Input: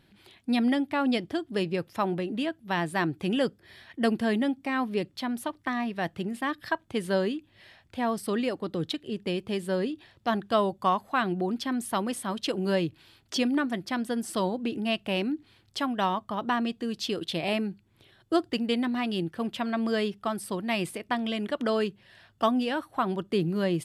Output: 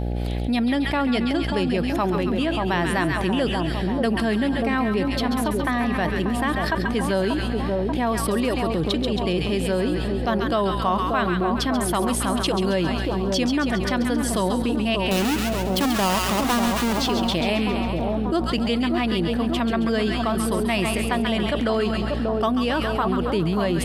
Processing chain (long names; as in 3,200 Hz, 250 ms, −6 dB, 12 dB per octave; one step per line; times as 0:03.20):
0:15.11–0:16.93: each half-wave held at its own peak
on a send: echo with a time of its own for lows and highs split 1,100 Hz, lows 586 ms, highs 136 ms, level −6 dB
on the sum: hum with harmonics 60 Hz, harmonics 14, −39 dBFS −6 dB per octave
envelope flattener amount 70%